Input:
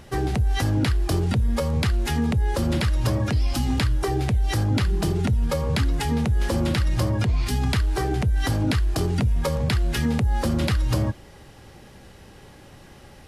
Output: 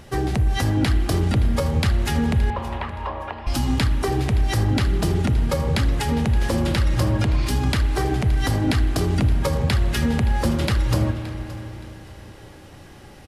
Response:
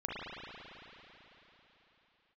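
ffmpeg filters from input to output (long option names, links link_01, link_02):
-filter_complex "[0:a]asettb=1/sr,asplit=3[link_01][link_02][link_03];[link_01]atrim=end=2.504[link_04];[link_02]atrim=start=2.5:end=3.47,asetpts=PTS-STARTPTS,afade=type=in:duration=0.004:curve=qsin,afade=type=out:start_time=0.966:duration=0.004:curve=qsin,highpass=frequency=490:width=0.5412,highpass=frequency=490:width=1.3066,equalizer=frequency=520:width_type=q:width=4:gain=-6,equalizer=frequency=980:width_type=q:width=4:gain=9,equalizer=frequency=1500:width_type=q:width=4:gain=-7,equalizer=frequency=2200:width_type=q:width=4:gain=-6,lowpass=frequency=2500:width=0.5412,lowpass=frequency=2500:width=1.3066[link_05];[link_03]atrim=start=3.466[link_06];[link_04][link_05]acrossfade=duration=0.004:curve1=hsin:curve2=qsin[link_07];[link_07][link_06]acrossfade=duration=0.004:curve1=qsin:curve2=hsin,aecho=1:1:571|1142|1713:0.141|0.0381|0.0103,asplit=2[link_08][link_09];[1:a]atrim=start_sample=2205[link_10];[link_09][link_10]afir=irnorm=-1:irlink=0,volume=-11dB[link_11];[link_08][link_11]amix=inputs=2:normalize=0"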